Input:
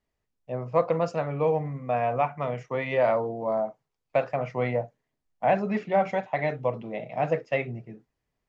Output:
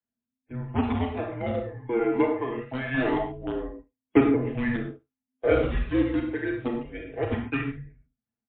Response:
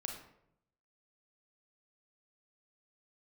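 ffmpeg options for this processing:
-filter_complex "[0:a]agate=range=-16dB:threshold=-38dB:ratio=16:detection=peak,aecho=1:1:5.5:0.75,acrossover=split=210|400|2300[link_01][link_02][link_03][link_04];[link_01]adynamicequalizer=threshold=0.00562:dfrequency=160:dqfactor=0.73:tfrequency=160:tqfactor=0.73:attack=5:release=100:ratio=0.375:range=3:mode=cutabove:tftype=bell[link_05];[link_02]acrusher=bits=4:mix=0:aa=0.000001[link_06];[link_05][link_06][link_03][link_04]amix=inputs=4:normalize=0,aphaser=in_gain=1:out_gain=1:delay=1.8:decay=0.5:speed=0.24:type=triangular,asettb=1/sr,asplit=3[link_07][link_08][link_09];[link_07]atrim=end=5.714[link_10];[link_08]atrim=start=5.71:end=6.54,asetpts=PTS-STARTPTS,afade=type=in:duration=0.004:curve=qsin,afade=type=out:start_time=0.826:duration=0.004:curve=qsin,equalizer=frequency=1000:width_type=o:width=1.4:gain=-8[link_11];[link_09]atrim=start=6.536[link_12];[link_10][link_11]acrossfade=duration=0.004:curve1=hsin:curve2=qsin[link_13];[link_13][link_12]acrossfade=duration=0.004:curve1=qsin:curve2=hsin,afreqshift=-260,aecho=1:1:71:0.0708[link_14];[1:a]atrim=start_sample=2205,atrim=end_sample=6615[link_15];[link_14][link_15]afir=irnorm=-1:irlink=0" -ar 8000 -c:a libmp3lame -b:a 24k

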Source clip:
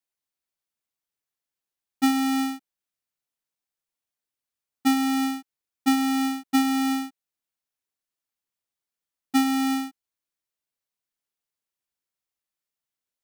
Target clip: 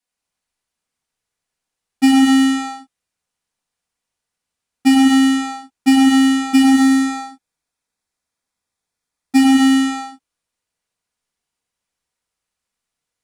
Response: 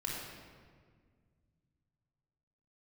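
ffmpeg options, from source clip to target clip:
-filter_complex "[0:a]asettb=1/sr,asplit=3[link_01][link_02][link_03];[link_01]atrim=end=6.634[link_04];[link_02]atrim=start=6.63:end=9.38,asetpts=PTS-STARTPTS,afade=type=in:duration=0.004:curve=qsin,afade=type=out:start_time=2.746:duration=0.004:curve=qsin,bandreject=frequency=2900:width=7.7[link_05];[link_03]atrim=start=9.376[link_06];[link_04][link_05]acrossfade=duration=0.004:curve1=hsin:curve2=qsin[link_07];[link_07][link_06]acrossfade=duration=0.004:curve1=qsin:curve2=hsin[link_08];[1:a]atrim=start_sample=2205,atrim=end_sample=6174,asetrate=22050,aresample=44100[link_09];[link_08][link_09]afir=irnorm=-1:irlink=0,volume=4dB"

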